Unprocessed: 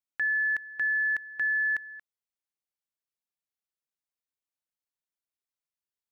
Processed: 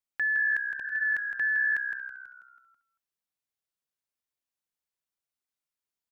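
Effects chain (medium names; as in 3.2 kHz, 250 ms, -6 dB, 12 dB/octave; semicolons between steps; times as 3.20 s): spectral replace 0.77–1.02 s, 1.1–2.3 kHz; on a send: frequency-shifting echo 163 ms, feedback 49%, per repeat -64 Hz, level -7 dB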